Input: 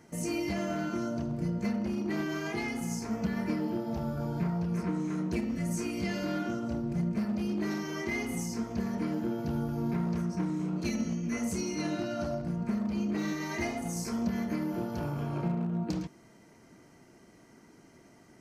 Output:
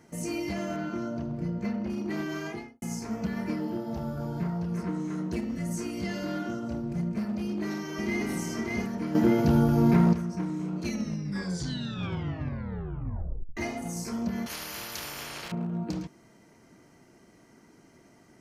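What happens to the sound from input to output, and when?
0.76–1.9 bell 10000 Hz -10.5 dB 1.5 oct
2.41–2.82 studio fade out
3.56–6.69 notch 2400 Hz
7.39–8.27 echo throw 0.59 s, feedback 15%, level -1.5 dB
9.15–10.13 gain +10.5 dB
10.92 tape stop 2.65 s
14.46–15.52 spectral compressor 10:1

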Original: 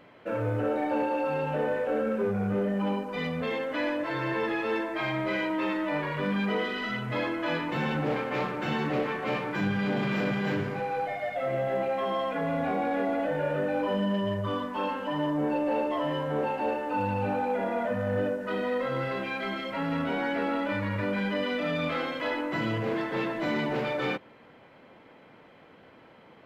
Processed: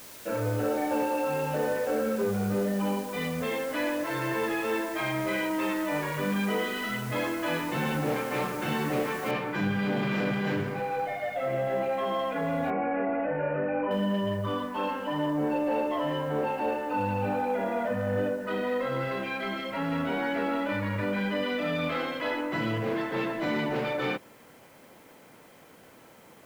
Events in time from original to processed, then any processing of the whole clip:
9.31 noise floor step -47 dB -62 dB
12.7–13.91 elliptic low-pass 2600 Hz

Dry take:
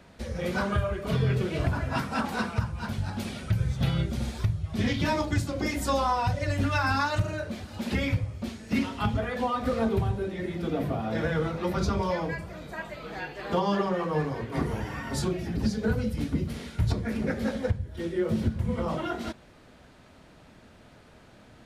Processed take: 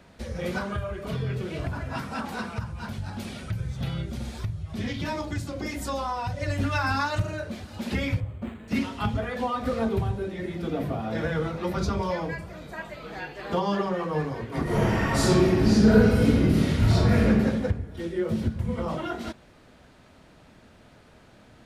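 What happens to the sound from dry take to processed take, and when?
0.58–6.39 compressor 1.5:1, threshold -33 dBFS
8.2–8.68 decimation joined by straight lines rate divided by 8×
14.63–17.27 reverb throw, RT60 1.5 s, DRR -10 dB

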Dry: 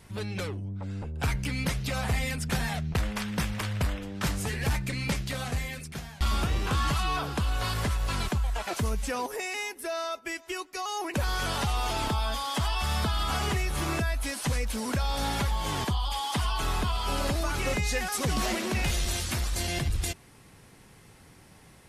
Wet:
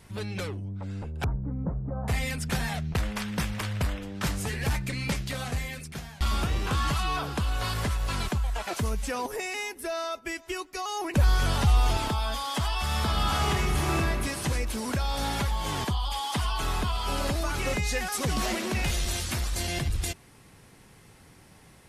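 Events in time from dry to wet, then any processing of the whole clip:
1.24–2.08 Bessel low-pass 680 Hz, order 8
9.25–11.97 low shelf 170 Hz +11 dB
12.88–14.02 reverb throw, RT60 2.8 s, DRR 0.5 dB

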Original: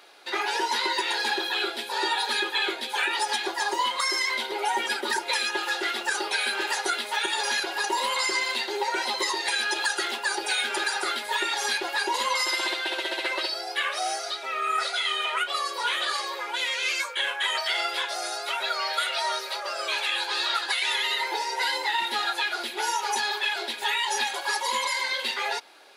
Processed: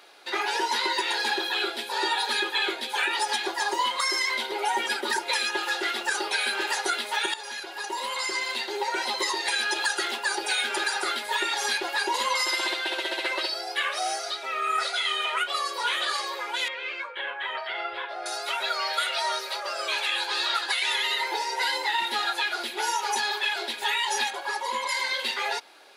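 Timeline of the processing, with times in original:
7.34–9.73 fade in equal-power, from -12.5 dB
16.68–18.26 air absorption 460 m
24.3–24.89 high shelf 2500 Hz -9.5 dB

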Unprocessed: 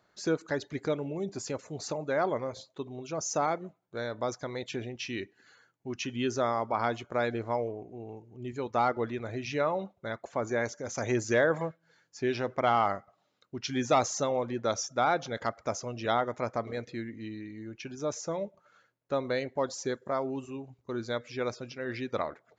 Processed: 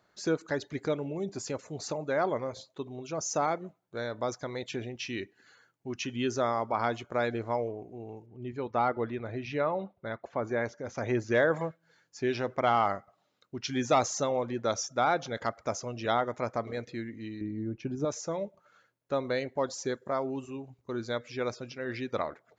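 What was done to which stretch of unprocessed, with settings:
8.26–11.35 air absorption 180 m
17.41–18.05 tilt shelf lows +9.5 dB, about 840 Hz

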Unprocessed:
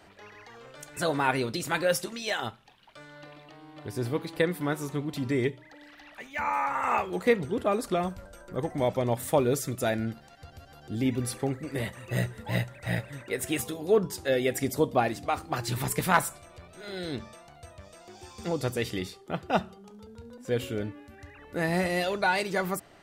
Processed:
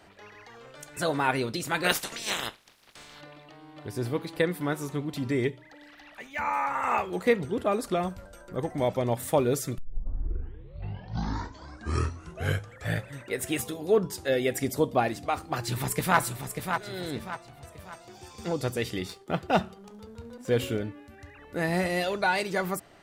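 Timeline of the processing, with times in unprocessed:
1.83–3.2 spectral limiter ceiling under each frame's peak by 25 dB
9.78 tape start 3.38 s
15.51–16.18 echo throw 0.59 s, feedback 40%, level -6.5 dB
17.08–17.71 high shelf 11000 Hz -8.5 dB
19.09–20.77 sample leveller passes 1

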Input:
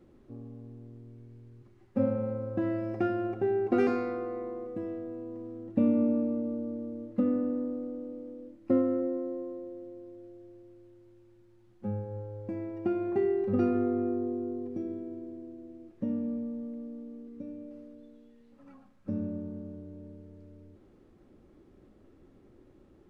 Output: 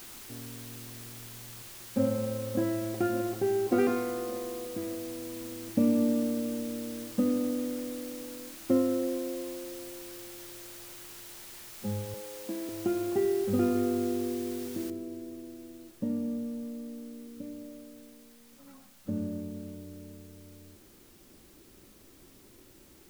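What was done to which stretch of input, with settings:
1.2–2.05 echo throw 0.58 s, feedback 60%, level -8.5 dB
12.14–12.69 steep high-pass 180 Hz 48 dB/oct
14.9 noise floor step -47 dB -60 dB

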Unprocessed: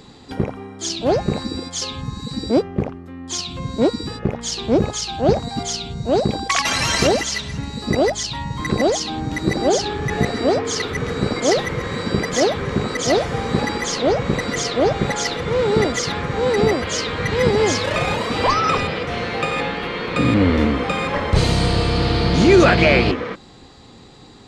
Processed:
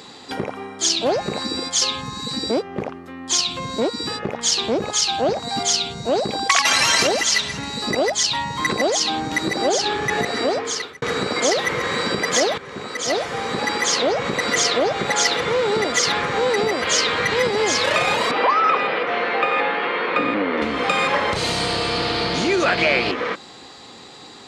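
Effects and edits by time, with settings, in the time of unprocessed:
10.32–11.02 fade out
12.58–14.33 fade in, from -15.5 dB
18.31–20.62 BPF 250–2300 Hz
whole clip: compressor 4:1, threshold -20 dBFS; HPF 650 Hz 6 dB/oct; gain +7.5 dB

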